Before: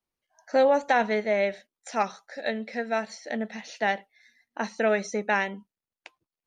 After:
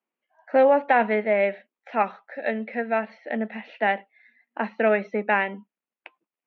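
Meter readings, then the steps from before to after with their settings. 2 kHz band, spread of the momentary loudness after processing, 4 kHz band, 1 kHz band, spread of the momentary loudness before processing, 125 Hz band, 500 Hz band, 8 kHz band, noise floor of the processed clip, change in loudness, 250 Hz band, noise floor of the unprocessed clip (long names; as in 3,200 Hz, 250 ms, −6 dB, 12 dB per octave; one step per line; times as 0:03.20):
+2.5 dB, 12 LU, −4.5 dB, +3.5 dB, 12 LU, can't be measured, +3.0 dB, below −25 dB, below −85 dBFS, +3.0 dB, +3.0 dB, below −85 dBFS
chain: elliptic band-pass filter 210–2,700 Hz, stop band 50 dB
level +3.5 dB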